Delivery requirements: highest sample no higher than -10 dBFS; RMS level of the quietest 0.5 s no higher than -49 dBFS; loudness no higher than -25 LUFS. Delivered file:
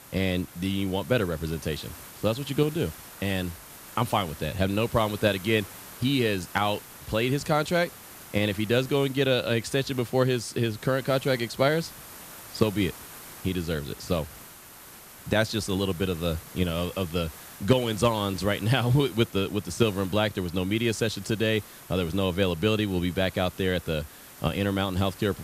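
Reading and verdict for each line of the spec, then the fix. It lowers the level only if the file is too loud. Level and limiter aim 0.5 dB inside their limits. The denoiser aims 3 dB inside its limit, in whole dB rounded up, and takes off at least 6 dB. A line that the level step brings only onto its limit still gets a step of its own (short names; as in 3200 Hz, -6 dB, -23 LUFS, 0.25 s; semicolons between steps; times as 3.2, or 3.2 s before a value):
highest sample -8.5 dBFS: fail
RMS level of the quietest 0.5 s -47 dBFS: fail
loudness -27.0 LUFS: OK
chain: denoiser 6 dB, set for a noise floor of -47 dBFS; limiter -10.5 dBFS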